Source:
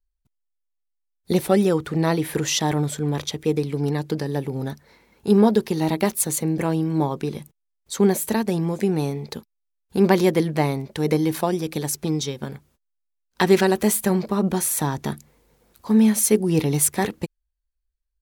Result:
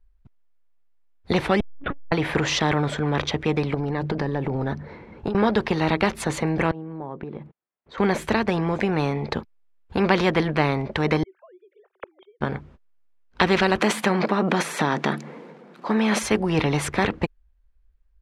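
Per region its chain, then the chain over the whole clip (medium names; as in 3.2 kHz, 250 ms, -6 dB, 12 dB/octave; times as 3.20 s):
1.60–2.12 s: block-companded coder 7-bit + monotone LPC vocoder at 8 kHz 280 Hz + transformer saturation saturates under 250 Hz
3.74–5.35 s: tilt shelf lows +3 dB, about 680 Hz + hum notches 50/100/150/200/250 Hz + compression 10:1, threshold -24 dBFS
6.71–7.98 s: high-pass 340 Hz 6 dB/octave + tape spacing loss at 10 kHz 33 dB + compression 4:1, threshold -44 dBFS
11.23–12.41 s: formants replaced by sine waves + rippled Chebyshev high-pass 370 Hz, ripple 3 dB + inverted gate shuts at -36 dBFS, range -37 dB
13.80–16.23 s: transient shaper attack +1 dB, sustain +8 dB + brick-wall FIR high-pass 150 Hz
whole clip: low-pass 2.1 kHz 12 dB/octave; bass shelf 250 Hz +5 dB; spectrum-flattening compressor 2:1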